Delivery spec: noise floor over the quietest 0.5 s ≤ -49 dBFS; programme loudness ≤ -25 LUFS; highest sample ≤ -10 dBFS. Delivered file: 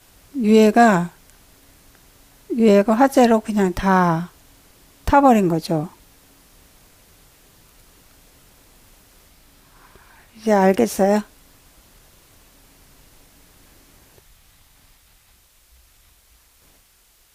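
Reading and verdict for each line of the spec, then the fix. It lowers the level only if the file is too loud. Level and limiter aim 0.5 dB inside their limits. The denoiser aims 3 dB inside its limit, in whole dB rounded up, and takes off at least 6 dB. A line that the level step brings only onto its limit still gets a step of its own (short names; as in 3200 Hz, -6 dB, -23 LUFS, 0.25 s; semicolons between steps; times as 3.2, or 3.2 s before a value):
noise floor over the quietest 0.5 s -57 dBFS: OK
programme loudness -17.0 LUFS: fail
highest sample -4.0 dBFS: fail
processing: gain -8.5 dB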